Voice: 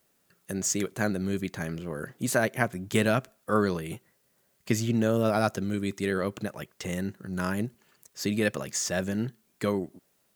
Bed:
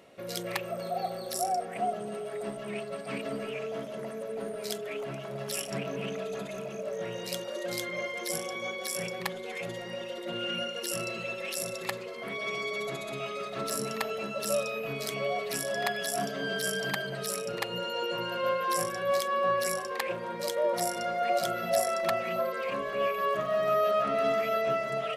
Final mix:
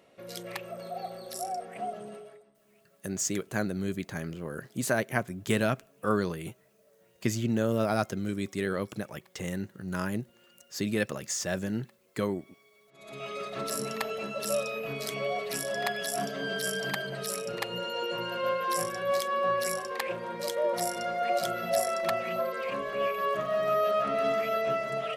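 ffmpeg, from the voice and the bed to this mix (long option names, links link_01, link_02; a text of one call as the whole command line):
ffmpeg -i stem1.wav -i stem2.wav -filter_complex "[0:a]adelay=2550,volume=-2.5dB[link_01];[1:a]volume=23.5dB,afade=type=out:start_time=2.06:duration=0.39:silence=0.0630957,afade=type=in:start_time=12.93:duration=0.43:silence=0.0375837[link_02];[link_01][link_02]amix=inputs=2:normalize=0" out.wav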